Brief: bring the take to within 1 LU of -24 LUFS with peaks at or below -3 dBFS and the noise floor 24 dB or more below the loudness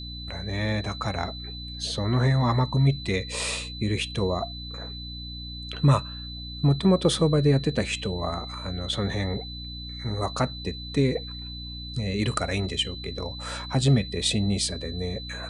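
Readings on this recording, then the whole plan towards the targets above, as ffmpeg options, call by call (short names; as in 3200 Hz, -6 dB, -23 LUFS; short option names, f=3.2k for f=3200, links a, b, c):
hum 60 Hz; harmonics up to 300 Hz; hum level -36 dBFS; steady tone 4000 Hz; tone level -38 dBFS; loudness -27.0 LUFS; peak -8.5 dBFS; loudness target -24.0 LUFS
-> -af "bandreject=f=60:t=h:w=6,bandreject=f=120:t=h:w=6,bandreject=f=180:t=h:w=6,bandreject=f=240:t=h:w=6,bandreject=f=300:t=h:w=6"
-af "bandreject=f=4k:w=30"
-af "volume=3dB"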